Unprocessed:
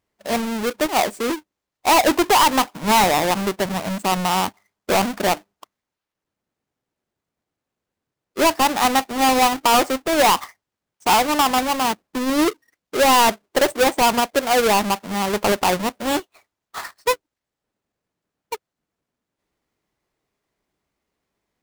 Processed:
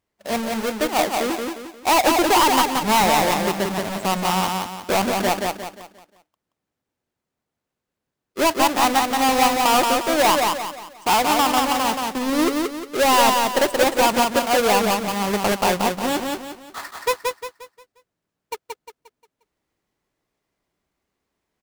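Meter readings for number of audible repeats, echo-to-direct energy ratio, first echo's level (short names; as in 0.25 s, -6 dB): 4, -3.0 dB, -3.5 dB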